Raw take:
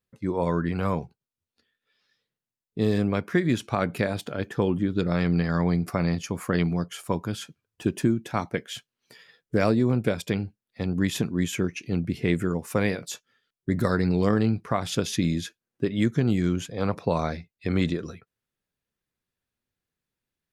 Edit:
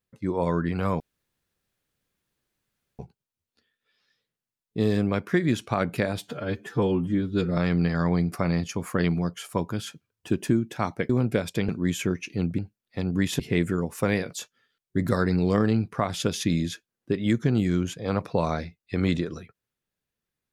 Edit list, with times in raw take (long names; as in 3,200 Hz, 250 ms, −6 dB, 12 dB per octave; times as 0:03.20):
0:01.00: splice in room tone 1.99 s
0:04.19–0:05.12: time-stretch 1.5×
0:08.64–0:09.82: remove
0:10.41–0:11.22: move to 0:12.12